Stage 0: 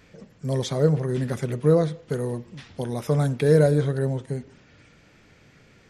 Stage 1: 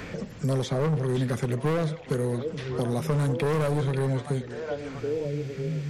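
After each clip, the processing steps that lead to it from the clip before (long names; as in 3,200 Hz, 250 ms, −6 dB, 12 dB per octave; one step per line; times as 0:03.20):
echo through a band-pass that steps 538 ms, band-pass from 2,600 Hz, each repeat −1.4 octaves, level −7 dB
gain into a clipping stage and back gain 21 dB
multiband upward and downward compressor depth 70%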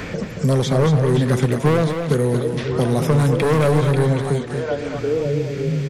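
single-tap delay 228 ms −7 dB
level +8.5 dB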